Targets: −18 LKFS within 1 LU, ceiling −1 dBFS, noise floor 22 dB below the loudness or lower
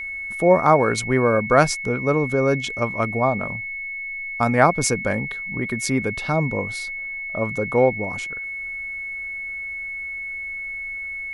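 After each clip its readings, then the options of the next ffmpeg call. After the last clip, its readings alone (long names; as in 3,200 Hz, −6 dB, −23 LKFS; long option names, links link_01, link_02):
interfering tone 2,200 Hz; level of the tone −28 dBFS; integrated loudness −22.0 LKFS; sample peak −1.5 dBFS; target loudness −18.0 LKFS
→ -af "bandreject=frequency=2200:width=30"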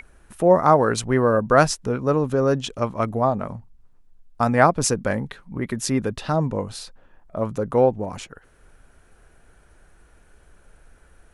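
interfering tone none found; integrated loudness −21.0 LKFS; sample peak −1.5 dBFS; target loudness −18.0 LKFS
→ -af "volume=3dB,alimiter=limit=-1dB:level=0:latency=1"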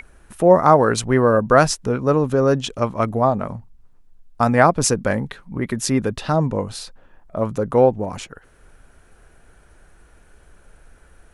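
integrated loudness −18.5 LKFS; sample peak −1.0 dBFS; background noise floor −52 dBFS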